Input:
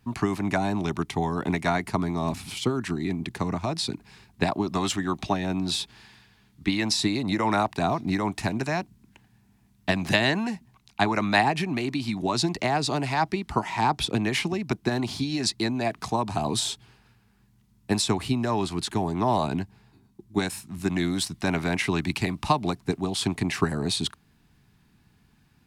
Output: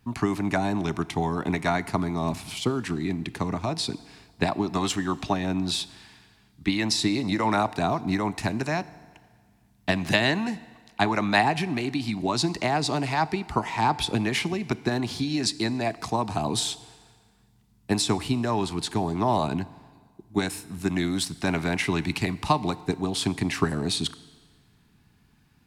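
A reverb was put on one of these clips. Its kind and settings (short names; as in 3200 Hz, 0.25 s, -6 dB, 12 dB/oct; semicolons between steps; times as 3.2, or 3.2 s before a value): FDN reverb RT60 1.7 s, low-frequency decay 0.75×, high-frequency decay 0.85×, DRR 16.5 dB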